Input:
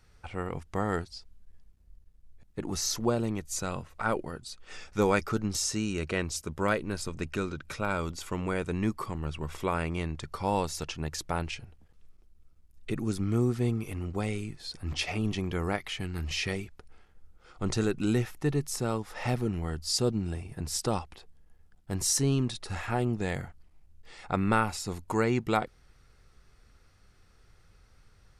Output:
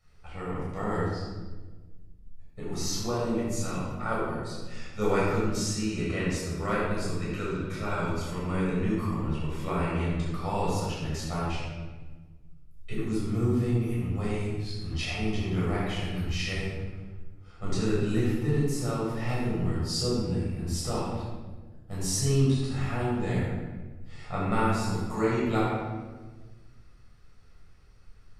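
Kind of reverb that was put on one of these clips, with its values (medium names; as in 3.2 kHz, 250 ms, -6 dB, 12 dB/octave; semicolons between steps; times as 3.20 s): simulated room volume 1000 m³, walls mixed, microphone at 6.3 m; trim -11.5 dB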